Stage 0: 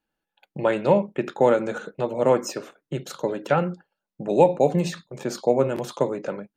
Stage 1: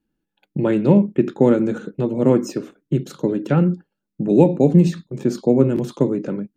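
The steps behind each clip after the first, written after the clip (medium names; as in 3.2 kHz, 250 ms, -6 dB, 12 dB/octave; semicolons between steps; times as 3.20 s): resonant low shelf 440 Hz +12 dB, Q 1.5; trim -2.5 dB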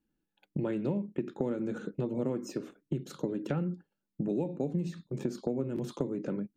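compression 6:1, threshold -24 dBFS, peak gain reduction 16 dB; trim -5.5 dB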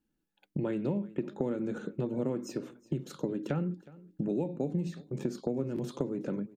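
feedback delay 366 ms, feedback 29%, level -21 dB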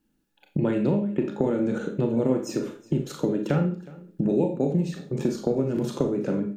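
reverberation RT60 0.35 s, pre-delay 27 ms, DRR 4 dB; trim +7.5 dB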